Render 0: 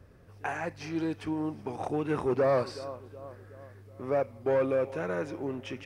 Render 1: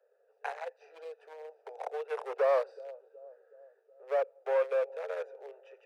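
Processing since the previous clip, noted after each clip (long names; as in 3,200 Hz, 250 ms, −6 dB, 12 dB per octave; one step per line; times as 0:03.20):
adaptive Wiener filter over 41 samples
Butterworth high-pass 440 Hz 96 dB per octave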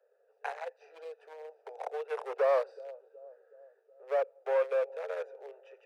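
no processing that can be heard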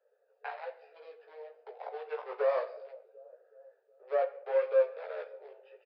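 rectangular room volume 120 cubic metres, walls mixed, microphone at 0.34 metres
multi-voice chorus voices 4, 0.86 Hz, delay 16 ms, depth 2.8 ms
downsampling to 11,025 Hz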